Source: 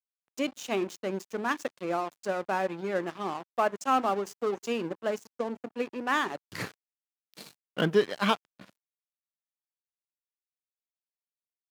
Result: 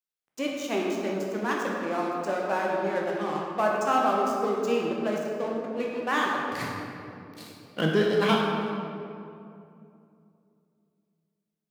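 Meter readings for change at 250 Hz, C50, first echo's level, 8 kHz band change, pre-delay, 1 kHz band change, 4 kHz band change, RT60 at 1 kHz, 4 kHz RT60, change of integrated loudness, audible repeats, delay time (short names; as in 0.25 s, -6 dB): +4.5 dB, 0.5 dB, none, +1.5 dB, 11 ms, +3.5 dB, +2.5 dB, 2.4 s, 1.5 s, +3.5 dB, none, none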